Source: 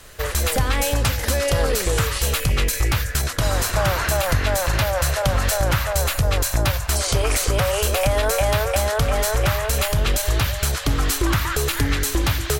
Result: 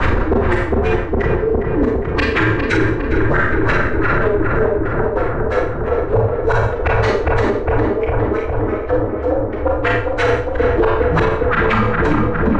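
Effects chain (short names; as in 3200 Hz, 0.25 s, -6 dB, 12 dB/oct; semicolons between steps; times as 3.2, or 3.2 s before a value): LPF 8500 Hz 24 dB/oct; bell 130 Hz +12.5 dB 2.6 oct; negative-ratio compressor -29 dBFS, ratio -0.5; frequency shift -120 Hz; LFO low-pass sine 6 Hz 340–2100 Hz; darkening echo 0.407 s, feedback 83%, low-pass 1600 Hz, level -5 dB; Schroeder reverb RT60 0.46 s, combs from 28 ms, DRR -1 dB; maximiser +15.5 dB; gain -5 dB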